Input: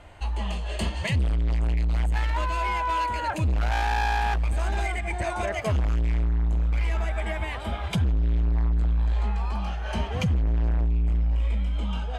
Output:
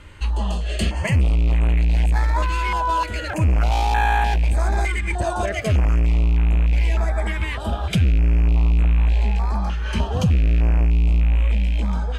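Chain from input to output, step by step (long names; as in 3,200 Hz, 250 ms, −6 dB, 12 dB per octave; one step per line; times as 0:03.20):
loose part that buzzes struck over −23 dBFS, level −29 dBFS
notch on a step sequencer 3.3 Hz 710–5,000 Hz
level +6.5 dB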